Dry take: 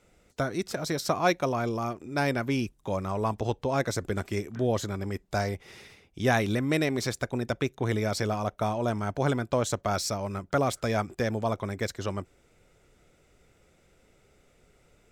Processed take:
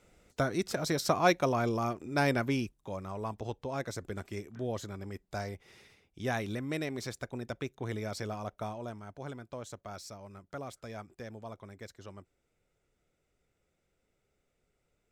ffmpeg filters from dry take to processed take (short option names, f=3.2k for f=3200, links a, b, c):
-af "volume=-1dB,afade=t=out:st=2.4:d=0.4:silence=0.398107,afade=t=out:st=8.58:d=0.44:silence=0.446684"